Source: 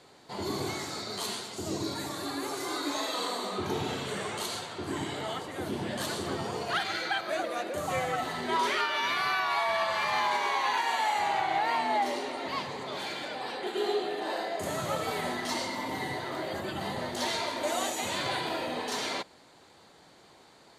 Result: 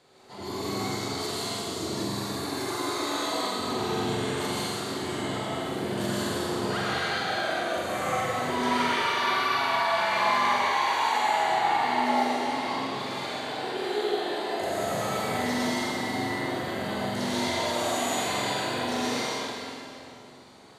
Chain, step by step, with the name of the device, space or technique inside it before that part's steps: tunnel (flutter echo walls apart 7.7 m, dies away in 0.56 s; reverb RT60 2.8 s, pre-delay 94 ms, DRR -6.5 dB); gain -5.5 dB

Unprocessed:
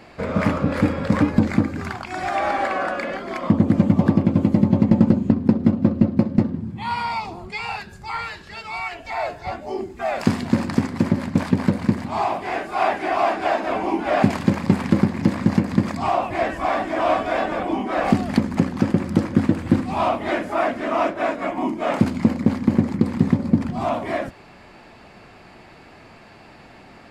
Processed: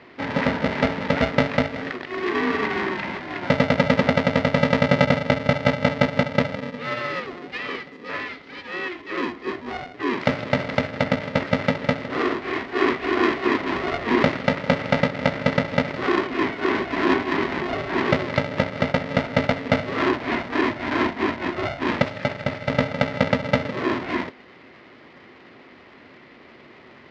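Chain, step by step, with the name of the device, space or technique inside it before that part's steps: 22.02–22.7 tilt +2 dB/oct; ring modulator pedal into a guitar cabinet (polarity switched at an audio rate 360 Hz; speaker cabinet 83–4500 Hz, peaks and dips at 250 Hz +8 dB, 370 Hz +9 dB, 2000 Hz +8 dB); gain -4.5 dB

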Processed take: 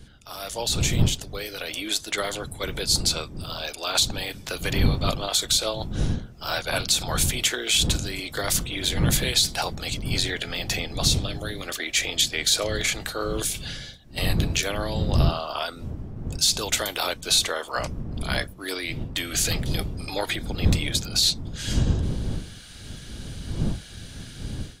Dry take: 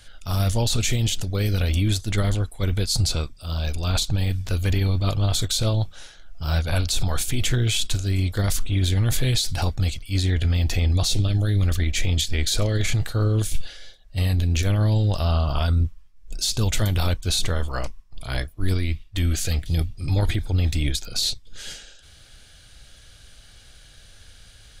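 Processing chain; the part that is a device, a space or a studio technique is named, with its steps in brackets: Bessel high-pass 510 Hz, order 6; smartphone video outdoors (wind noise 140 Hz -32 dBFS; AGC gain up to 13 dB; gain -6 dB; AAC 128 kbps 44100 Hz)

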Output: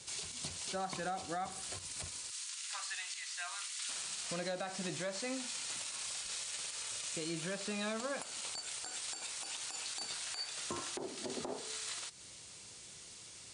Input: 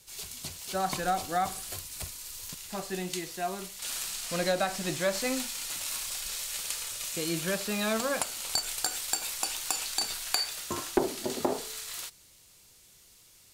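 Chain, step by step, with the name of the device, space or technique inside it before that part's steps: 2.3–3.89 HPF 1200 Hz 24 dB/oct; podcast mastering chain (HPF 85 Hz 12 dB/oct; compressor 4:1, threshold -45 dBFS, peak gain reduction 21 dB; limiter -35 dBFS, peak gain reduction 10 dB; gain +7 dB; MP3 96 kbps 22050 Hz)

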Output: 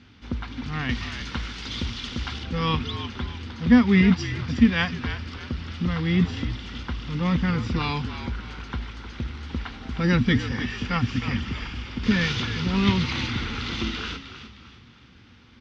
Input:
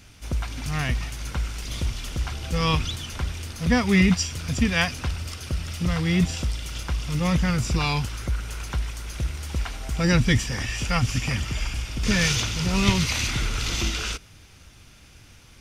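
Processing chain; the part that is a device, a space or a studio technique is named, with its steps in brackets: frequency-shifting delay pedal into a guitar cabinet (frequency-shifting echo 0.308 s, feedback 38%, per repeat -59 Hz, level -10.5 dB; speaker cabinet 76–4000 Hz, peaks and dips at 140 Hz -5 dB, 240 Hz +9 dB, 630 Hz -10 dB, 2500 Hz -5 dB); 0.89–2.44 high shelf 2600 Hz +11.5 dB

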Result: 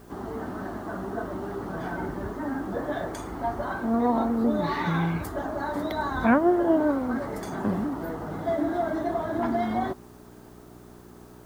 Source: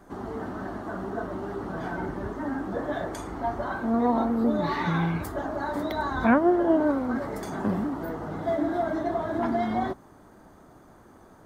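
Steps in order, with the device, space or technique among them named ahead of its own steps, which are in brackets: video cassette with head-switching buzz (buzz 60 Hz, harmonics 7, -50 dBFS 0 dB/oct; white noise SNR 34 dB)

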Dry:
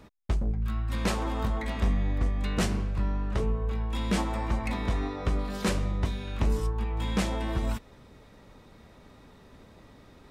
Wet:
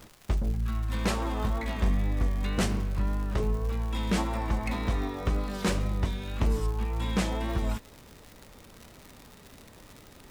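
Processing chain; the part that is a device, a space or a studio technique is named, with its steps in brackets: vinyl LP (wow and flutter; crackle 140/s -36 dBFS; pink noise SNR 30 dB)

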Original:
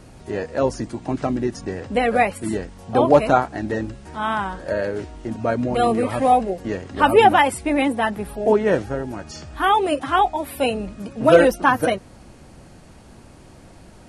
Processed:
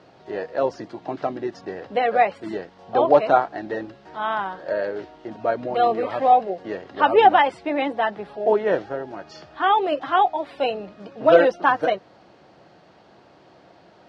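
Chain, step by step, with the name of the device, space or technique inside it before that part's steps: kitchen radio (speaker cabinet 230–4600 Hz, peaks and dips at 240 Hz -9 dB, 700 Hz +4 dB, 2400 Hz -4 dB); gain -2 dB

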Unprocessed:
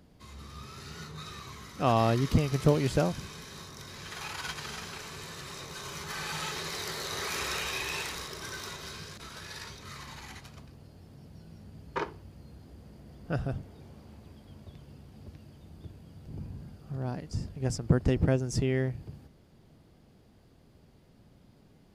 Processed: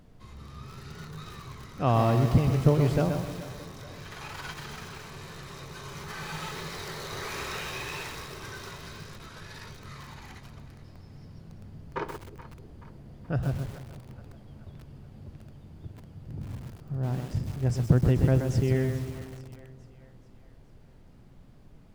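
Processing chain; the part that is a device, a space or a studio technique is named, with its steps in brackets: 10.84–11.39 bell 5200 Hz +14.5 dB 0.21 oct; car interior (bell 120 Hz +6 dB 0.65 oct; high shelf 3100 Hz -8 dB; brown noise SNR 22 dB); split-band echo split 530 Hz, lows 0.311 s, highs 0.428 s, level -15 dB; lo-fi delay 0.127 s, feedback 35%, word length 7-bit, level -6 dB

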